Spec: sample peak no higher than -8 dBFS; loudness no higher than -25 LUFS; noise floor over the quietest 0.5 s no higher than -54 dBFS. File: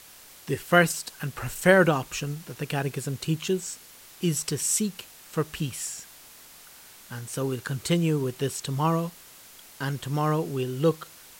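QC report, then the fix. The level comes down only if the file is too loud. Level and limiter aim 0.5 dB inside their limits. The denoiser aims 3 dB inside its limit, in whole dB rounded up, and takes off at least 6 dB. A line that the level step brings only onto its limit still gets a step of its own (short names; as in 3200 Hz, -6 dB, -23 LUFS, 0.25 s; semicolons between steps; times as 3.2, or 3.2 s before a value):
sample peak -5.0 dBFS: fail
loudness -27.0 LUFS: OK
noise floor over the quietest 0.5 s -49 dBFS: fail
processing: denoiser 8 dB, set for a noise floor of -49 dBFS; limiter -8.5 dBFS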